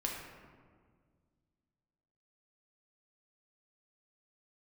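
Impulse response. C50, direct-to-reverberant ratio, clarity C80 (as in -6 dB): 2.0 dB, -1.5 dB, 4.0 dB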